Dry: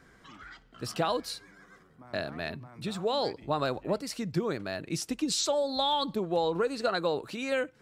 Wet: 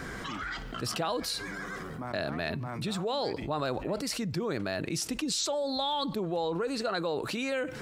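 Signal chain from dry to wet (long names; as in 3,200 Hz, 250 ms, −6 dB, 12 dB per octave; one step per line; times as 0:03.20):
envelope flattener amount 70%
level −5 dB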